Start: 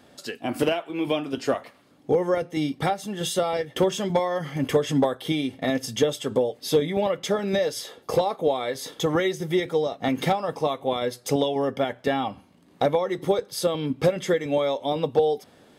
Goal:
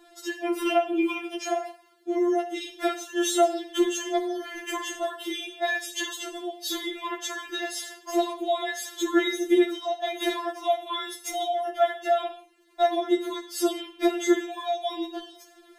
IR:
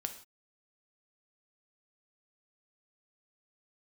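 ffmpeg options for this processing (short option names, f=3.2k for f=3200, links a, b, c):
-filter_complex "[1:a]atrim=start_sample=2205[a];[0:a][a]afir=irnorm=-1:irlink=0,afftfilt=real='re*4*eq(mod(b,16),0)':imag='im*4*eq(mod(b,16),0)':win_size=2048:overlap=0.75,volume=3dB"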